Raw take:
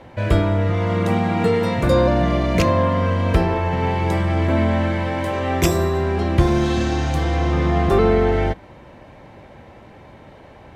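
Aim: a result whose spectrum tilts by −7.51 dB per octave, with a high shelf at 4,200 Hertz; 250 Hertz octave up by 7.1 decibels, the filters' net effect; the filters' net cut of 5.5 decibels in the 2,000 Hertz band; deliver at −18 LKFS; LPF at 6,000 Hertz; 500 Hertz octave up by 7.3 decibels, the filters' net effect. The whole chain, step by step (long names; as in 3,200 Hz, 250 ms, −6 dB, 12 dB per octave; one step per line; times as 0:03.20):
low-pass filter 6,000 Hz
parametric band 250 Hz +7.5 dB
parametric band 500 Hz +7 dB
parametric band 2,000 Hz −6.5 dB
high-shelf EQ 4,200 Hz −4.5 dB
level −4 dB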